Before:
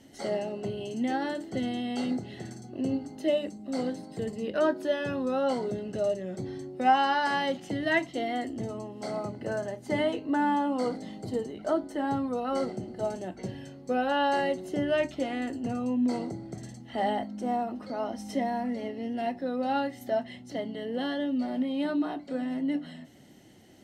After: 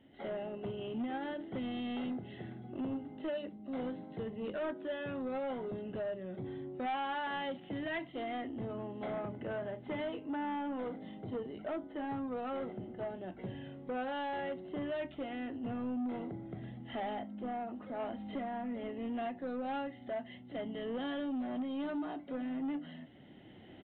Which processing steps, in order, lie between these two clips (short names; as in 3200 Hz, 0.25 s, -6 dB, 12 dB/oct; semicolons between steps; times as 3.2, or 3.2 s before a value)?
recorder AGC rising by 8.3 dB/s; 0.53–1.39 transient shaper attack +2 dB, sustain -7 dB; soft clip -24.5 dBFS, distortion -13 dB; downsampling 8000 Hz; gain -8 dB